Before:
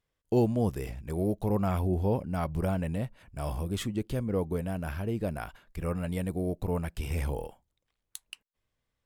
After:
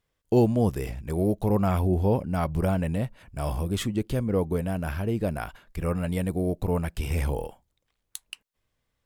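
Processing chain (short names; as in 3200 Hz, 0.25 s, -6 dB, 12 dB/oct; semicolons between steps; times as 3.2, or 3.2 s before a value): gain +4.5 dB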